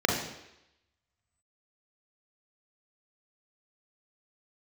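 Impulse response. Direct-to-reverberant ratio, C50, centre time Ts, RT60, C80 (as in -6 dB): -1.0 dB, 3.5 dB, 45 ms, 0.85 s, 6.5 dB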